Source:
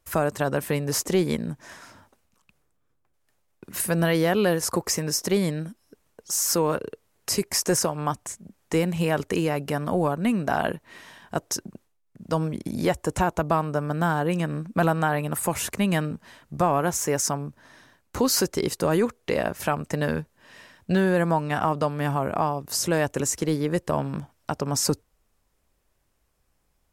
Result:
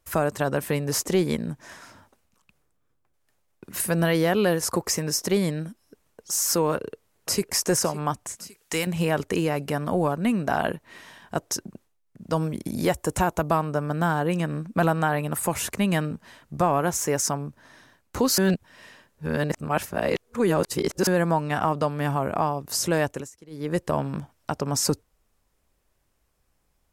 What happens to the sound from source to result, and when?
6.71–7.49 echo throw 0.56 s, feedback 50%, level -15.5 dB
8.36–8.87 tilt shelf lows -8 dB, about 1200 Hz
12.36–13.58 high shelf 9200 Hz +9 dB
18.38–21.07 reverse
23.04–23.76 dip -22.5 dB, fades 0.26 s

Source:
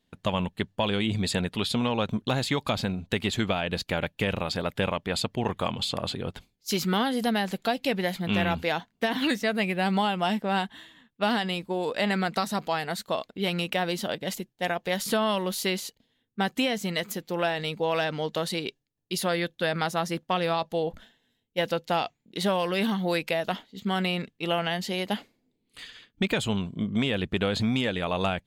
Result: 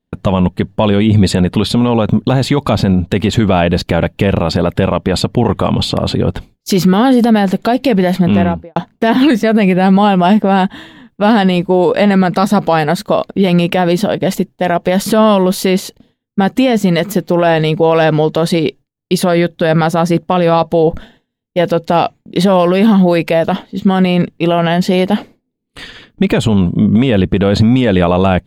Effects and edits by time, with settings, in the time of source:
8.16–8.76 studio fade out
whole clip: tilt shelf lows +6.5 dB, about 1300 Hz; gate with hold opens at -48 dBFS; maximiser +17 dB; gain -1 dB

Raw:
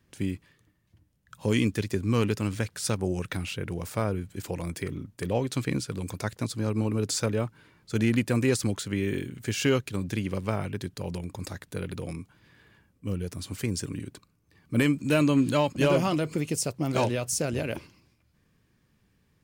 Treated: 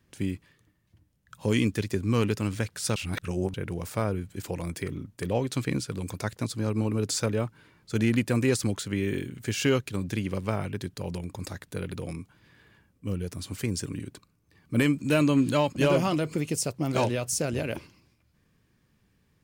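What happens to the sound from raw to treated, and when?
2.96–3.54 reverse

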